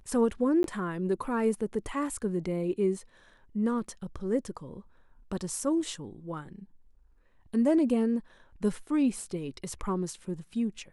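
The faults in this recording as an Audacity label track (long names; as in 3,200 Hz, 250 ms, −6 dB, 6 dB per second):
0.630000	0.640000	drop-out 12 ms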